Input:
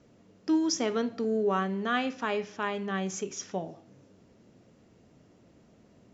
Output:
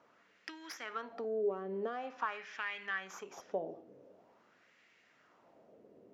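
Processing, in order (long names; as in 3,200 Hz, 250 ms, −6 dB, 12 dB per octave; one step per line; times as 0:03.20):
stylus tracing distortion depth 0.094 ms
in parallel at −1.5 dB: brickwall limiter −22 dBFS, peak gain reduction 7 dB
on the sum: tilt shelving filter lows −4 dB, about 1,400 Hz
downward compressor 6 to 1, threshold −31 dBFS, peak gain reduction 11 dB
auto-filter band-pass sine 0.46 Hz 430–2,100 Hz
level +3.5 dB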